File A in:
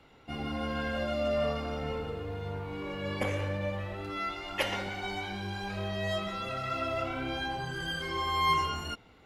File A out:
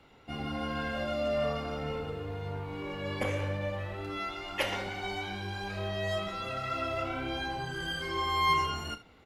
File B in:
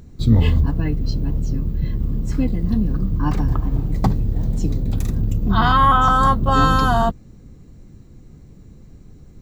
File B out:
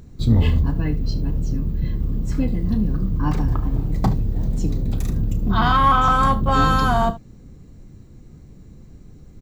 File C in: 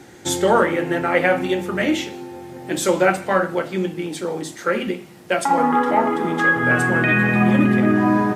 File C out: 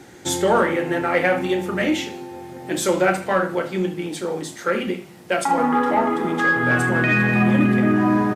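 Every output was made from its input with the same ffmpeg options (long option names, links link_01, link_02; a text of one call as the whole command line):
ffmpeg -i in.wav -filter_complex "[0:a]aecho=1:1:33|74:0.224|0.133,asplit=2[link_01][link_02];[link_02]asoftclip=type=tanh:threshold=-16dB,volume=-7.5dB[link_03];[link_01][link_03]amix=inputs=2:normalize=0,volume=-3.5dB" out.wav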